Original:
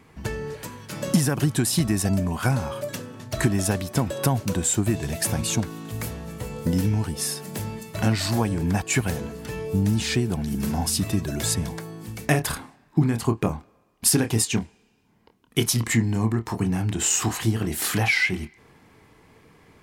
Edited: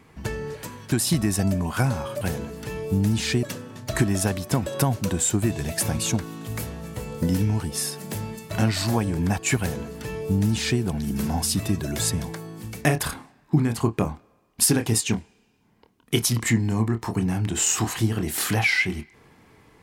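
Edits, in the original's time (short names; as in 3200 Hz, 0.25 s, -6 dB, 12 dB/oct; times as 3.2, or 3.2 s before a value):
0.92–1.58 cut
9.03–10.25 copy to 2.87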